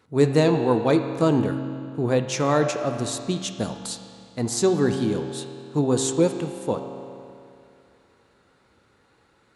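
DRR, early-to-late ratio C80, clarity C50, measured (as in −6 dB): 5.0 dB, 7.5 dB, 6.5 dB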